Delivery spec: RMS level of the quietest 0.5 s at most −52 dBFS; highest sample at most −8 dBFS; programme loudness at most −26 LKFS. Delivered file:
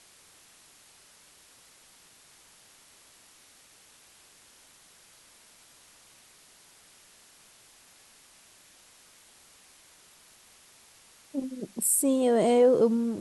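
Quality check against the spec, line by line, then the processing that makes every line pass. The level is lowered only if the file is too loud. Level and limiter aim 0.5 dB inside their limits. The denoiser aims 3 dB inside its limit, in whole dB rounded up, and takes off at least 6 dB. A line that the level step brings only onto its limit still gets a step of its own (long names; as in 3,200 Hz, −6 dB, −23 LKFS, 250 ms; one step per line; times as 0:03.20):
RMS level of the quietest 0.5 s −57 dBFS: in spec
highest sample −12.0 dBFS: in spec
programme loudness −24.5 LKFS: out of spec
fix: level −2 dB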